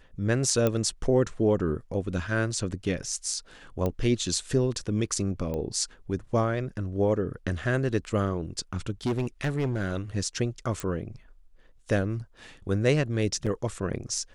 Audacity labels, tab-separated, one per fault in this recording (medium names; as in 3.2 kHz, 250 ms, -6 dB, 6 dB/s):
0.670000	0.670000	pop -12 dBFS
3.860000	3.860000	pop -16 dBFS
5.540000	5.540000	pop -21 dBFS
9.060000	9.980000	clipped -22.5 dBFS
10.800000	10.800000	pop
13.460000	13.470000	dropout 6.2 ms